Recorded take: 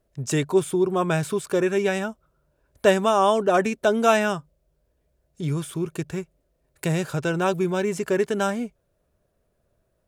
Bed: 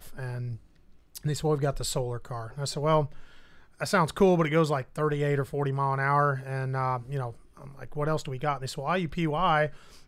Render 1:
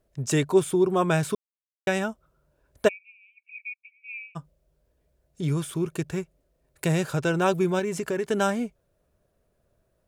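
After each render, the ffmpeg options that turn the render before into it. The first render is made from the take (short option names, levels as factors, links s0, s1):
-filter_complex "[0:a]asplit=3[s0][s1][s2];[s0]afade=t=out:st=2.87:d=0.02[s3];[s1]asuperpass=centerf=2400:order=8:qfactor=7.2,afade=t=in:st=2.87:d=0.02,afade=t=out:st=4.35:d=0.02[s4];[s2]afade=t=in:st=4.35:d=0.02[s5];[s3][s4][s5]amix=inputs=3:normalize=0,asettb=1/sr,asplit=3[s6][s7][s8];[s6]atrim=end=7.794[s9];[s7]atrim=start=7.79:end=8.31,asetpts=PTS-STARTPTS,afade=t=in:d=0.004:c=qsin,afade=t=out:st=0.516:d=0.004:c=qsin,acompressor=threshold=0.0562:ratio=3:attack=3.2:release=140:knee=1:detection=peak[s10];[s8]atrim=start=8.306[s11];[s9][s10]acrossfade=d=0.004:c1=hsin:c2=qsin[s12];[s12][s11]acrossfade=d=0.004:c1=qsin:c2=hsin,asplit=3[s13][s14][s15];[s13]atrim=end=1.35,asetpts=PTS-STARTPTS,afade=t=out:st=1.346:d=0.004:c=hsin[s16];[s14]atrim=start=1.35:end=1.87,asetpts=PTS-STARTPTS,volume=0[s17];[s15]atrim=start=1.87,asetpts=PTS-STARTPTS,afade=t=in:d=0.004:c=hsin[s18];[s16][s17][s18]concat=n=3:v=0:a=1"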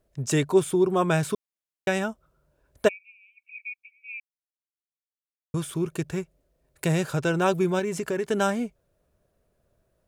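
-filter_complex "[0:a]asplit=3[s0][s1][s2];[s0]atrim=end=4.2,asetpts=PTS-STARTPTS,afade=t=out:st=4.196:d=0.004:c=hsin[s3];[s1]atrim=start=4.2:end=5.54,asetpts=PTS-STARTPTS,volume=0[s4];[s2]atrim=start=5.54,asetpts=PTS-STARTPTS,afade=t=in:d=0.004:c=hsin[s5];[s3][s4][s5]concat=n=3:v=0:a=1"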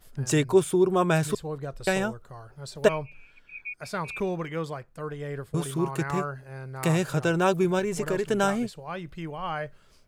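-filter_complex "[1:a]volume=0.398[s0];[0:a][s0]amix=inputs=2:normalize=0"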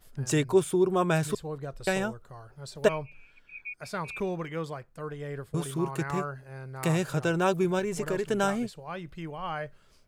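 -af "volume=0.75"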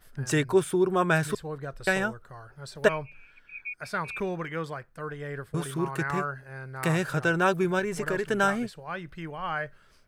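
-af "equalizer=f=1600:w=1.8:g=8,bandreject=f=7000:w=12"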